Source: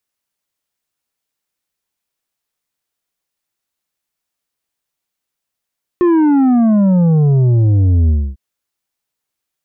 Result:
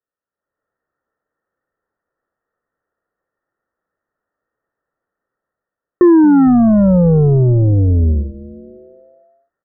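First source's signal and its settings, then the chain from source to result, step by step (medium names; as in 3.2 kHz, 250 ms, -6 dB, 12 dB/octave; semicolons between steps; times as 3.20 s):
sub drop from 360 Hz, over 2.35 s, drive 7 dB, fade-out 0.27 s, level -9 dB
level rider gain up to 13.5 dB; rippled Chebyshev low-pass 1.9 kHz, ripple 9 dB; frequency-shifting echo 227 ms, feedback 55%, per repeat -150 Hz, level -19 dB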